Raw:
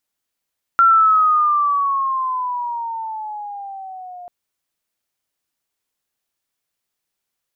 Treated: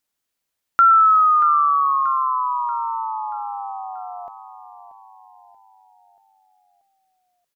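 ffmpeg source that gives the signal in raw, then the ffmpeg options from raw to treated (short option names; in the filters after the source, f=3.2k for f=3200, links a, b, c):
-f lavfi -i "aevalsrc='pow(10,(-8-24.5*t/3.49)/20)*sin(2*PI*1370*3.49/(-11.5*log(2)/12)*(exp(-11.5*log(2)/12*t/3.49)-1))':d=3.49:s=44100"
-af "aecho=1:1:633|1266|1899|2532|3165:0.237|0.121|0.0617|0.0315|0.016"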